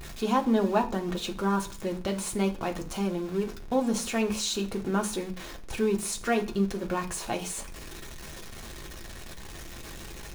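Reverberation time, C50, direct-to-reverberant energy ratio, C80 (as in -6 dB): 0.40 s, 14.5 dB, 1.0 dB, 19.0 dB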